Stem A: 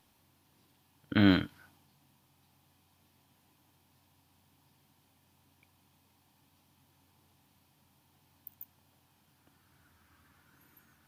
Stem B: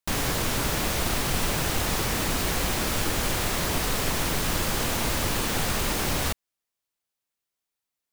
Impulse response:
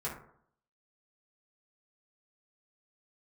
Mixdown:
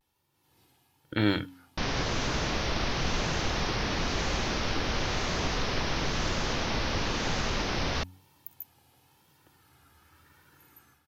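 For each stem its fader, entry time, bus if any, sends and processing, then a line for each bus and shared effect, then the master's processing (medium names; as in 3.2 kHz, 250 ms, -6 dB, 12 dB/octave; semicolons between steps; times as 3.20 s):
-9.5 dB, 0.00 s, no send, comb 2.3 ms, depth 48%; level rider gain up to 14.5 dB
-2.5 dB, 1.70 s, no send, steep low-pass 6.2 kHz 72 dB/octave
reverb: none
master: de-hum 91.51 Hz, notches 3; vibrato 0.99 Hz 85 cents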